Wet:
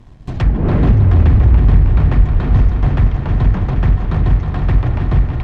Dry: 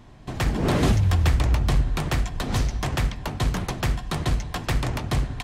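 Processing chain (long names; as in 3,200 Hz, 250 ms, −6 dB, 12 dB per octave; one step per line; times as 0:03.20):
low-shelf EQ 190 Hz +12 dB
on a send: echo machine with several playback heads 158 ms, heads second and third, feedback 69%, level −7.5 dB
on the sum: leveller curve on the samples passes 1
treble cut that deepens with the level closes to 2,000 Hz, closed at −12.5 dBFS
level −2.5 dB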